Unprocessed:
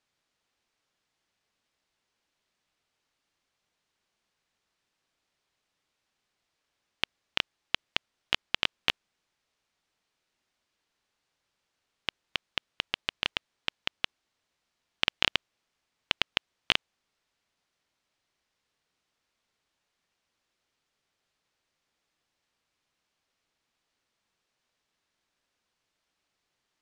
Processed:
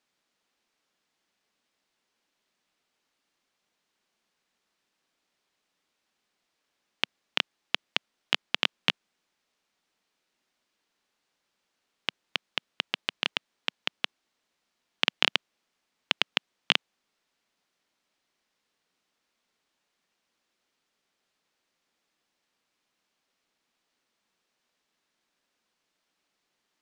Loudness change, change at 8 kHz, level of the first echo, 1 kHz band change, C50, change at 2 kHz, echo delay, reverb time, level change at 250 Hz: +1.5 dB, +1.5 dB, none, +1.5 dB, none, +1.5 dB, none, none, +3.0 dB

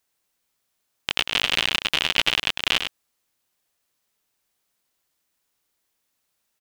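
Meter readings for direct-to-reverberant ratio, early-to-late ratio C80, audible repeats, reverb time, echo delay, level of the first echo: none, none, 1, none, 0.102 s, -7.5 dB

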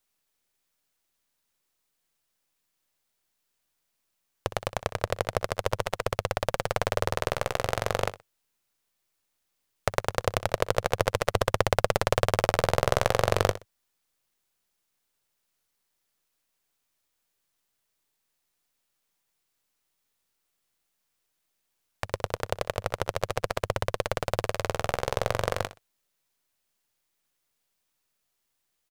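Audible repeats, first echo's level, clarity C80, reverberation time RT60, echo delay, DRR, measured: 2, -14.0 dB, none, none, 62 ms, none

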